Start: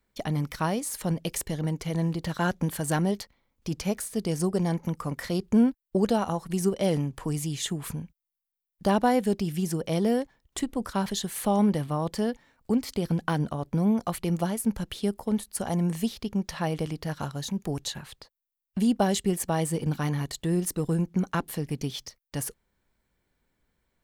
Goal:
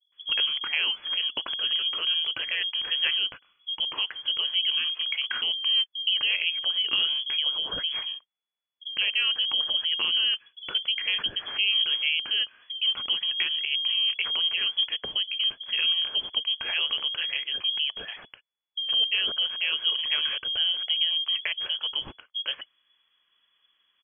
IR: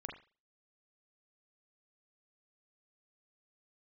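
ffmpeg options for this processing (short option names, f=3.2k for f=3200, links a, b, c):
-filter_complex "[0:a]alimiter=limit=-21.5dB:level=0:latency=1:release=62,acrossover=split=170[a][b];[b]adelay=120[c];[a][c]amix=inputs=2:normalize=0,lowpass=f=2.9k:t=q:w=0.5098,lowpass=f=2.9k:t=q:w=0.6013,lowpass=f=2.9k:t=q:w=0.9,lowpass=f=2.9k:t=q:w=2.563,afreqshift=-3400,volume=6dB"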